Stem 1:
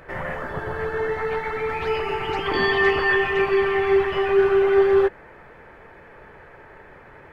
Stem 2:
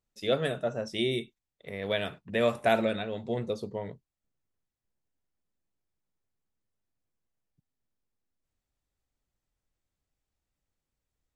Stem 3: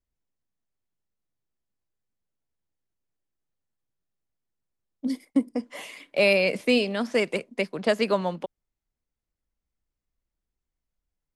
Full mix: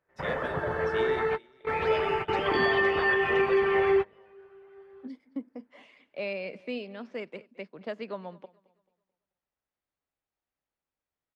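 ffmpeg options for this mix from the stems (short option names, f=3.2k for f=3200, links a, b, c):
-filter_complex "[0:a]volume=-1.5dB[a];[1:a]asplit=2[b][c];[c]highpass=f=720:p=1,volume=16dB,asoftclip=type=tanh:threshold=-10dB[d];[b][d]amix=inputs=2:normalize=0,lowpass=f=1.8k:p=1,volume=-6dB,bandreject=f=60:t=h:w=6,bandreject=f=120:t=h:w=6,bandreject=f=180:t=h:w=6,bandreject=f=240:t=h:w=6,bandreject=f=300:t=h:w=6,bandreject=f=360:t=h:w=6,bandreject=f=420:t=h:w=6,bandreject=f=480:t=h:w=6,bandreject=f=540:t=h:w=6,acompressor=threshold=-24dB:ratio=5,volume=-8dB,asplit=3[e][f][g];[f]volume=-17dB[h];[2:a]lowpass=4.1k,volume=-13dB,asplit=2[i][j];[j]volume=-22.5dB[k];[g]apad=whole_len=322893[l];[a][l]sidechaingate=range=-33dB:threshold=-54dB:ratio=16:detection=peak[m];[h][k]amix=inputs=2:normalize=0,aecho=0:1:218|436|654|872|1090:1|0.36|0.13|0.0467|0.0168[n];[m][e][i][n]amix=inputs=4:normalize=0,highpass=f=81:p=1,highshelf=f=4.8k:g=-8,alimiter=limit=-15.5dB:level=0:latency=1:release=180"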